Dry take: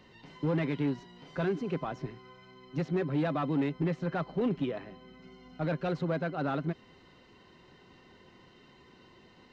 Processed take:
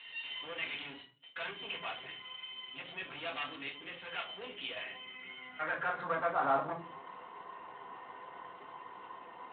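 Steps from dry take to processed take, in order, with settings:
downward compressor 16 to 1, threshold −32 dBFS, peak gain reduction 8 dB
0:03.49–0:04.87: low-shelf EQ 130 Hz −11.5 dB
soft clipping −34.5 dBFS, distortion −13 dB
0:00.84–0:02.17: noise gate −48 dBFS, range −33 dB
parametric band 230 Hz −13.5 dB 0.22 octaves
band-pass filter sweep 3,000 Hz → 990 Hz, 0:04.71–0:06.56
mains-hum notches 60/120/180/240/300/360/420 Hz
rectangular room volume 200 cubic metres, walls furnished, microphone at 1.7 metres
level +14.5 dB
Speex 18 kbit/s 8,000 Hz

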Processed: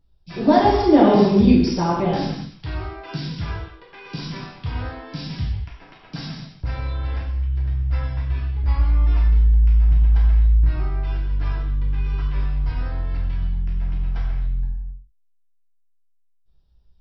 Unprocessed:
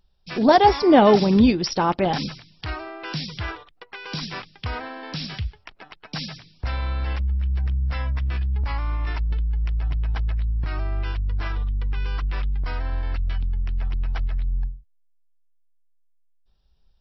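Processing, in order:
low-shelf EQ 400 Hz +11 dB
reverb whose tail is shaped and stops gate 310 ms falling, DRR −5.5 dB
level −10.5 dB

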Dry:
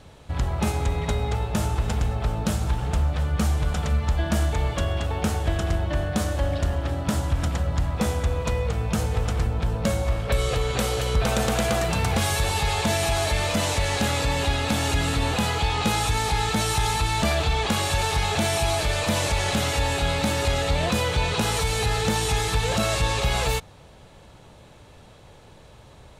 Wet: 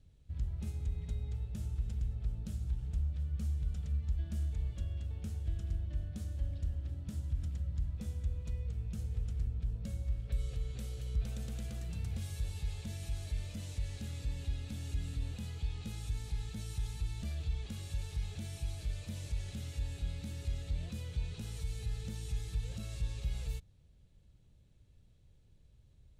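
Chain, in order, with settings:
guitar amp tone stack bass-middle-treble 10-0-1
level −3 dB

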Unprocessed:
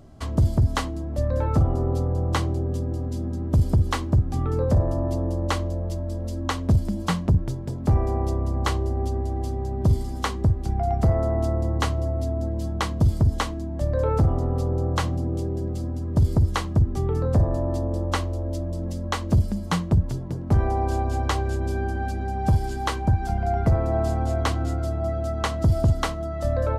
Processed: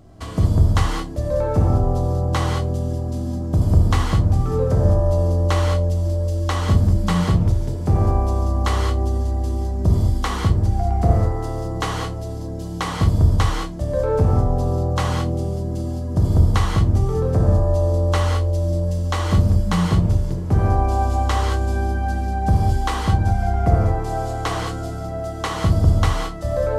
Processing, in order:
reverb whose tail is shaped and stops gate 240 ms flat, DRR −1.5 dB

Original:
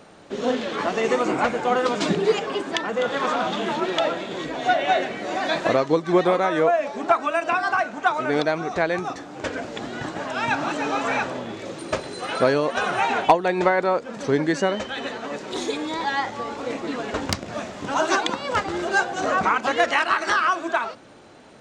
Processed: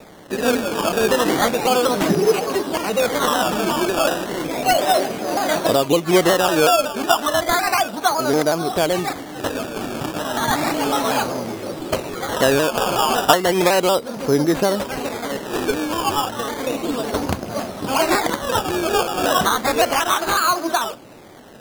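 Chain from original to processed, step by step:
parametric band 2,000 Hz −12.5 dB 0.52 octaves
in parallel at −0.5 dB: brickwall limiter −15.5 dBFS, peak gain reduction 11 dB
on the sum: sample-and-hold swept by an LFO 15×, swing 100% 0.33 Hz
pitch modulation by a square or saw wave saw down 5.4 Hz, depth 100 cents

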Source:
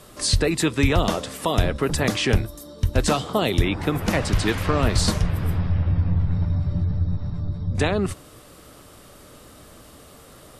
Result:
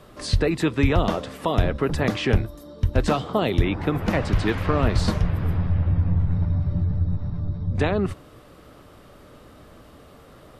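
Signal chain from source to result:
parametric band 9,200 Hz −14 dB 1.9 octaves

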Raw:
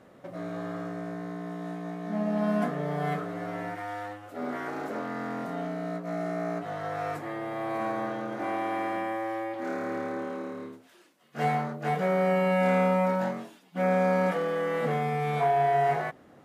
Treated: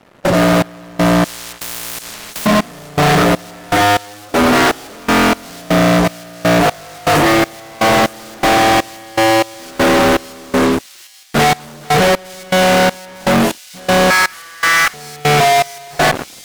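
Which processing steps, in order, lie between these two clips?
0:14.10–0:14.94: high-pass filter 1,300 Hz 24 dB per octave
in parallel at +2 dB: brickwall limiter −24 dBFS, peak gain reduction 10 dB
on the sum: fuzz pedal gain 43 dB, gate −46 dBFS
gate pattern "..xxx...xx." 121 BPM −24 dB
on a send: delay with a high-pass on its return 903 ms, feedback 61%, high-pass 4,900 Hz, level −13 dB
0:01.24–0:02.46: on the sum: every bin compressed towards the loudest bin 10 to 1
level +3.5 dB

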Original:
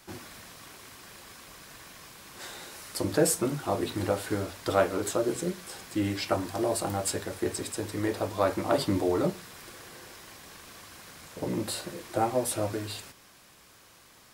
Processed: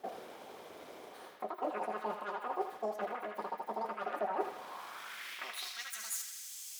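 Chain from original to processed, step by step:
parametric band 8,700 Hz +13.5 dB 2.2 octaves
reversed playback
downward compressor 10 to 1, threshold −37 dBFS, peak gain reduction 25.5 dB
reversed playback
band-pass filter sweep 220 Hz → 2,700 Hz, 0:09.55–0:12.51
formants moved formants +3 semitones
on a send: feedback echo with a band-pass in the loop 168 ms, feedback 72%, band-pass 1,000 Hz, level −3.5 dB
on the sum: change of speed 2.11×
level +12 dB

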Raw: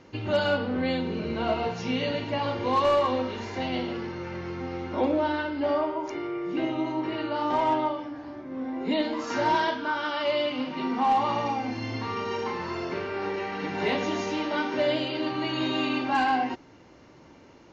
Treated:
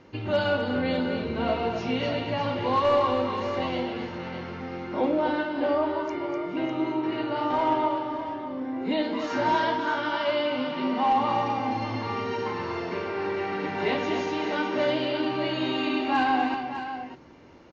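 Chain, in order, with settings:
Bessel low-pass filter 4,700 Hz, order 2
on a send: multi-tap delay 248/601 ms −7.5/−10 dB

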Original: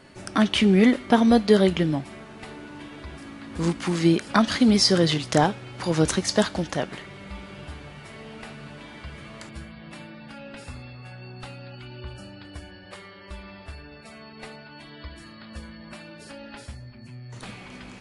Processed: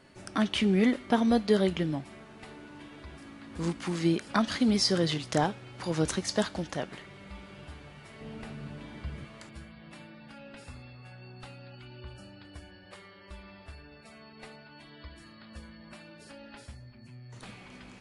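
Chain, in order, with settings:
0:08.21–0:09.25: low-shelf EQ 410 Hz +9.5 dB
level −7 dB

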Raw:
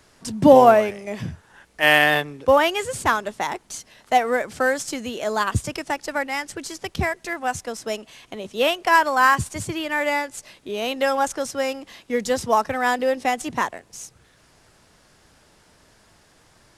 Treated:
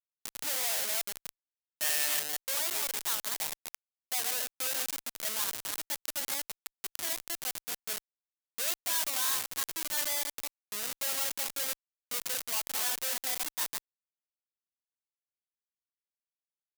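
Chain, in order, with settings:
delay that plays each chunk backwards 169 ms, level −6 dB
comparator with hysteresis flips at −22 dBFS
first difference

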